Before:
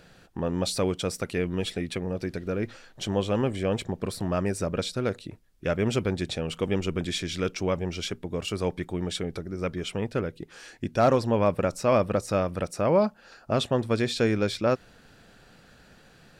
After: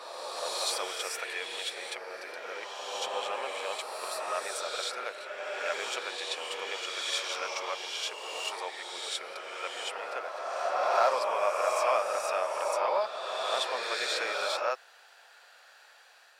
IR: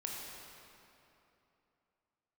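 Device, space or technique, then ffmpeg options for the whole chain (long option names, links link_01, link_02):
ghost voice: -filter_complex "[0:a]areverse[link_01];[1:a]atrim=start_sample=2205[link_02];[link_01][link_02]afir=irnorm=-1:irlink=0,areverse,highpass=frequency=680:width=0.5412,highpass=frequency=680:width=1.3066,volume=1.5dB"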